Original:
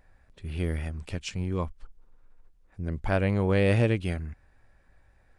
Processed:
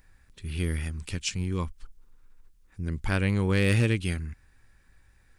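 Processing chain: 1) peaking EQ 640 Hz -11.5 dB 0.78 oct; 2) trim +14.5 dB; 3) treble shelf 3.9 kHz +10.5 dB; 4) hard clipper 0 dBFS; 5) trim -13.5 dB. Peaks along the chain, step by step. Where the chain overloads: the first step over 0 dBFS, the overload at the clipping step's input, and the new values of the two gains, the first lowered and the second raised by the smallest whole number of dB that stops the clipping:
-11.5 dBFS, +3.0 dBFS, +4.5 dBFS, 0.0 dBFS, -13.5 dBFS; step 2, 4.5 dB; step 2 +9.5 dB, step 5 -8.5 dB

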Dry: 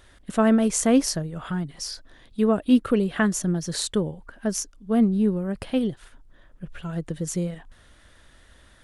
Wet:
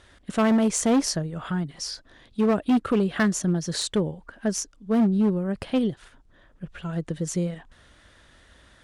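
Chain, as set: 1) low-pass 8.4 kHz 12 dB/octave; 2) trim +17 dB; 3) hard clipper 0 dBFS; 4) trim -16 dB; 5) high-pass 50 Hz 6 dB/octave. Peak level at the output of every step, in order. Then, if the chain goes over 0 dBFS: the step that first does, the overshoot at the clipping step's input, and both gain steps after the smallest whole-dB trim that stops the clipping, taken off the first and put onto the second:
-8.0 dBFS, +9.0 dBFS, 0.0 dBFS, -16.0 dBFS, -14.0 dBFS; step 2, 9.0 dB; step 2 +8 dB, step 4 -7 dB

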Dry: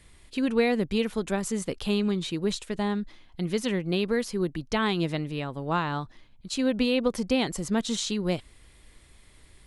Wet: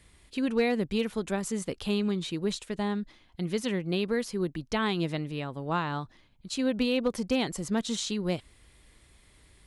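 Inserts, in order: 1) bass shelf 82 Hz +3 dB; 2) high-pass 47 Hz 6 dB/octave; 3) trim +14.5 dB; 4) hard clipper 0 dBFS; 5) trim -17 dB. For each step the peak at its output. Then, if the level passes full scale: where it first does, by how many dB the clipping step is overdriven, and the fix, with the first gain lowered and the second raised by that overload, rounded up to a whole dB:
-11.0 dBFS, -11.5 dBFS, +3.0 dBFS, 0.0 dBFS, -17.0 dBFS; step 3, 3.0 dB; step 3 +11.5 dB, step 5 -14 dB

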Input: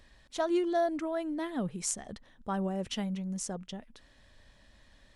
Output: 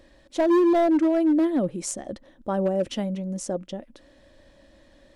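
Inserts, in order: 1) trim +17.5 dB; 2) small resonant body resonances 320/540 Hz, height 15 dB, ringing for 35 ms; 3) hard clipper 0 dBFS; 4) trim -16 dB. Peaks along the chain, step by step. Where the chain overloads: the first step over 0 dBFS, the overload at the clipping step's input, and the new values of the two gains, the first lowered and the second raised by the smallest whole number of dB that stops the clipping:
+3.5 dBFS, +8.5 dBFS, 0.0 dBFS, -16.0 dBFS; step 1, 8.5 dB; step 1 +8.5 dB, step 4 -7 dB

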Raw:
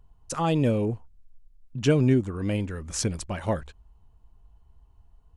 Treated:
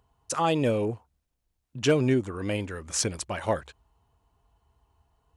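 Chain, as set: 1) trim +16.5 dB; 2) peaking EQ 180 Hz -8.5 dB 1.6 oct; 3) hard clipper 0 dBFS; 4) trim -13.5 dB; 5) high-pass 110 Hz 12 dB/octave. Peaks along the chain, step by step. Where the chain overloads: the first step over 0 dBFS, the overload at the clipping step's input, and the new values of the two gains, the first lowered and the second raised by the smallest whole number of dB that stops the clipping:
+6.5 dBFS, +4.5 dBFS, 0.0 dBFS, -13.5 dBFS, -10.0 dBFS; step 1, 4.5 dB; step 1 +11.5 dB, step 4 -8.5 dB

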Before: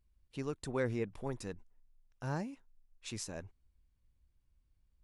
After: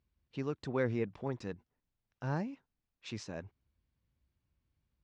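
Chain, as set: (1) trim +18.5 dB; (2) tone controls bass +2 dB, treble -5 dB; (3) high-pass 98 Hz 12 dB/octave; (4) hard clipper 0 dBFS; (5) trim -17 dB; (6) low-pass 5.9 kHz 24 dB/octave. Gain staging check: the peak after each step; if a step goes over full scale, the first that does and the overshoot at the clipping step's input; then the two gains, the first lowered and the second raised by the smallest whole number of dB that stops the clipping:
-2.5 dBFS, -2.0 dBFS, -3.5 dBFS, -3.5 dBFS, -20.5 dBFS, -20.5 dBFS; nothing clips

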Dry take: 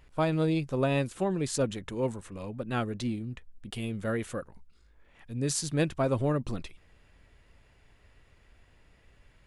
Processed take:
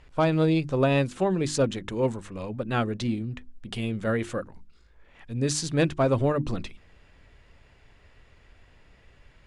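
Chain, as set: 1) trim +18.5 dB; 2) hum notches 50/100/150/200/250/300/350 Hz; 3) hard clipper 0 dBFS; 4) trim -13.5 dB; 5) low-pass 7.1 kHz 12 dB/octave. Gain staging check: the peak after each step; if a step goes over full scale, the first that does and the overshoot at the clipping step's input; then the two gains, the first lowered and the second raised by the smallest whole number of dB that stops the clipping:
+3.0 dBFS, +4.5 dBFS, 0.0 dBFS, -13.5 dBFS, -13.0 dBFS; step 1, 4.5 dB; step 1 +13.5 dB, step 4 -8.5 dB

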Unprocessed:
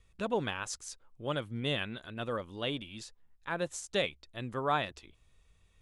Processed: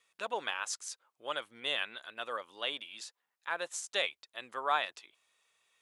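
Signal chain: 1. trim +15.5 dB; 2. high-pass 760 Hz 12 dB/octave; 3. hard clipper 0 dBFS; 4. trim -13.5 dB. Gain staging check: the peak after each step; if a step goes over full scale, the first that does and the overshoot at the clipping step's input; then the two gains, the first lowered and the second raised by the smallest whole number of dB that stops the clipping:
-2.0 dBFS, -2.5 dBFS, -2.5 dBFS, -16.0 dBFS; nothing clips

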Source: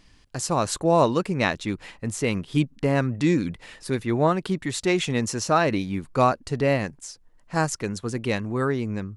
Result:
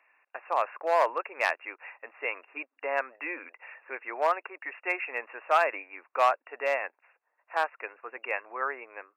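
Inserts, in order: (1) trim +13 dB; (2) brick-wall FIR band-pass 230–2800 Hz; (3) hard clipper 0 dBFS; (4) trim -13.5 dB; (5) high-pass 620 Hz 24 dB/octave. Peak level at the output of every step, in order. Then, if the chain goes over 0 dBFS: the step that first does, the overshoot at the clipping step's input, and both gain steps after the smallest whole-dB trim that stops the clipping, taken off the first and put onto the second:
+6.0 dBFS, +7.0 dBFS, 0.0 dBFS, -13.5 dBFS, -11.0 dBFS; step 1, 7.0 dB; step 1 +6 dB, step 4 -6.5 dB

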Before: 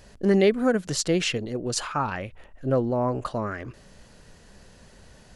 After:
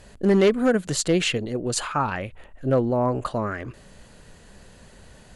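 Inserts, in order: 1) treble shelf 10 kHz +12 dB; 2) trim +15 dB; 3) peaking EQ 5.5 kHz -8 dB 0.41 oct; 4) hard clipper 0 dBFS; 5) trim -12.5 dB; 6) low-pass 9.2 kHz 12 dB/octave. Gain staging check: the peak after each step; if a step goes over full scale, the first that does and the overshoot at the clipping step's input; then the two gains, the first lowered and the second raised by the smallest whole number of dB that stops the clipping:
-7.0 dBFS, +8.0 dBFS, +6.0 dBFS, 0.0 dBFS, -12.5 dBFS, -11.5 dBFS; step 2, 6.0 dB; step 2 +9 dB, step 5 -6.5 dB

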